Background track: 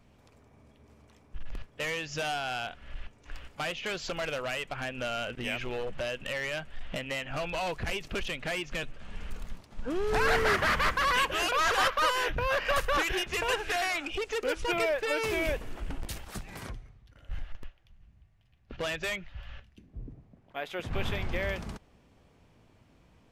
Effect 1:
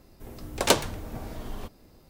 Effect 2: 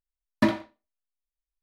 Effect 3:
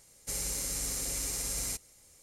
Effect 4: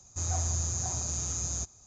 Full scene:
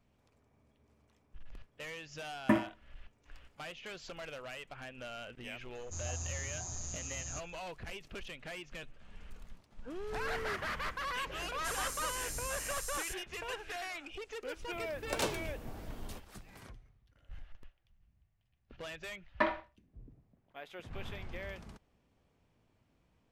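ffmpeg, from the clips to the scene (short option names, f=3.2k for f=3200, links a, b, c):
-filter_complex "[2:a]asplit=2[a][b];[0:a]volume=-11.5dB[c];[a]asuperstop=centerf=4600:order=4:qfactor=0.95[d];[3:a]acrossover=split=3200[e][f];[f]adelay=390[g];[e][g]amix=inputs=2:normalize=0[h];[1:a]alimiter=limit=-12dB:level=0:latency=1:release=12[i];[b]acrossover=split=490 3000:gain=0.0891 1 0.0708[j][k][l];[j][k][l]amix=inputs=3:normalize=0[m];[d]atrim=end=1.62,asetpts=PTS-STARTPTS,volume=-5.5dB,afade=t=in:d=0.004:c=hsin,afade=t=out:st=1.616:d=0.004:c=hsin,adelay=2070[n];[4:a]atrim=end=1.86,asetpts=PTS-STARTPTS,volume=-9.5dB,afade=t=in:d=0.004:c=hsin,afade=t=out:st=1.856:d=0.004:c=hsin,adelay=5750[o];[h]atrim=end=2.22,asetpts=PTS-STARTPTS,volume=-7dB,afade=t=in:d=0.004:c=hsin,afade=t=out:st=2.216:d=0.004:c=hsin,adelay=484218S[p];[i]atrim=end=2.09,asetpts=PTS-STARTPTS,volume=-9dB,afade=t=in:d=0.004:c=hsin,afade=t=out:st=2.086:d=0.004:c=hsin,adelay=14520[q];[m]atrim=end=1.62,asetpts=PTS-STARTPTS,volume=-1.5dB,afade=t=in:d=0.004:c=hsin,afade=t=out:st=1.616:d=0.004:c=hsin,adelay=18980[r];[c][n][o][p][q][r]amix=inputs=6:normalize=0"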